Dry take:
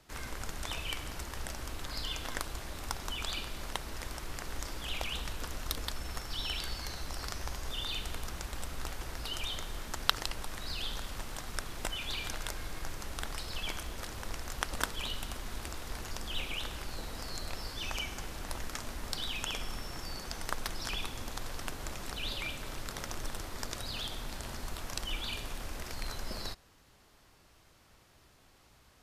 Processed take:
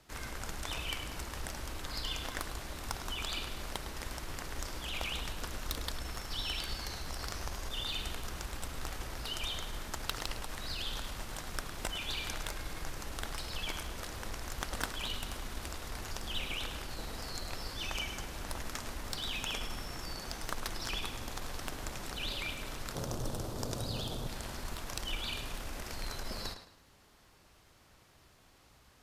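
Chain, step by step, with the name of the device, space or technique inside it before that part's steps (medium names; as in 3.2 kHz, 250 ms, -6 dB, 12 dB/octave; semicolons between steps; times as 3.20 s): 22.95–24.27 s: graphic EQ 125/250/500/2000 Hz +11/+3/+7/-9 dB; rockabilly slapback (valve stage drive 22 dB, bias 0.4; tape echo 105 ms, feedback 34%, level -9 dB, low-pass 5.9 kHz); trim +1 dB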